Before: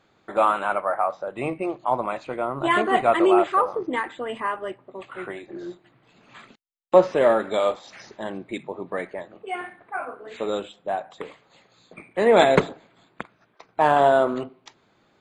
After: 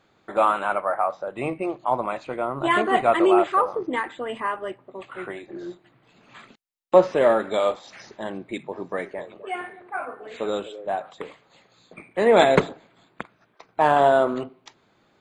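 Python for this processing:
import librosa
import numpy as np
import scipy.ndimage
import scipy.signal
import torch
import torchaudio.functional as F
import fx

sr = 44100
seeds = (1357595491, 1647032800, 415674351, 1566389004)

y = fx.echo_stepped(x, sr, ms=254, hz=450.0, octaves=1.4, feedback_pct=70, wet_db=-11.5, at=(8.71, 11.1), fade=0.02)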